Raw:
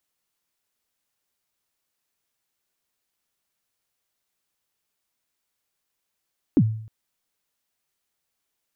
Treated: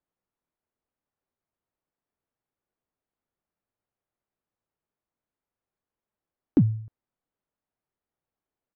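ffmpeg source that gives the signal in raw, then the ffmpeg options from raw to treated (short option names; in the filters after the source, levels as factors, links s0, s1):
-f lavfi -i "aevalsrc='0.299*pow(10,-3*t/0.61)*sin(2*PI*(340*0.057/log(110/340)*(exp(log(110/340)*min(t,0.057)/0.057)-1)+110*max(t-0.057,0)))':d=0.31:s=44100"
-af "adynamicsmooth=sensitivity=5:basefreq=1200,aresample=11025,aresample=44100"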